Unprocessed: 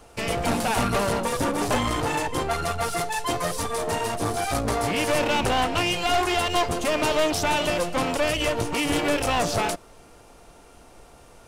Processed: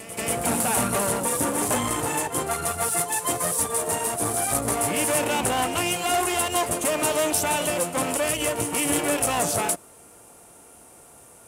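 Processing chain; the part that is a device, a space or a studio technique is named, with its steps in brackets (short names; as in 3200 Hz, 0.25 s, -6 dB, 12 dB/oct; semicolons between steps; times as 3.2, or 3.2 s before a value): budget condenser microphone (HPF 94 Hz 12 dB/oct; resonant high shelf 6700 Hz +11 dB, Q 1.5); pre-echo 0.188 s -12 dB; gain -1.5 dB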